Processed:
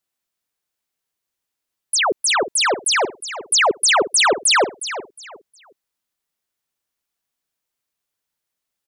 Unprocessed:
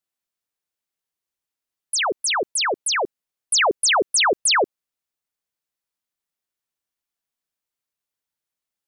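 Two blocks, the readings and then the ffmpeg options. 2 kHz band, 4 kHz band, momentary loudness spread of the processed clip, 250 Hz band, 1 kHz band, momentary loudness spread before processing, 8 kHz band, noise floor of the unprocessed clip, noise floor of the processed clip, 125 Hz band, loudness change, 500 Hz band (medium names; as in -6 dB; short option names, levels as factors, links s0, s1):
+3.0 dB, +3.0 dB, 13 LU, +3.0 dB, +3.0 dB, 7 LU, +3.0 dB, under -85 dBFS, -82 dBFS, no reading, +2.5 dB, +3.0 dB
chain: -filter_complex "[0:a]asplit=2[s0][s1];[s1]alimiter=limit=0.0841:level=0:latency=1,volume=0.794[s2];[s0][s2]amix=inputs=2:normalize=0,aecho=1:1:361|722|1083:0.251|0.0628|0.0157"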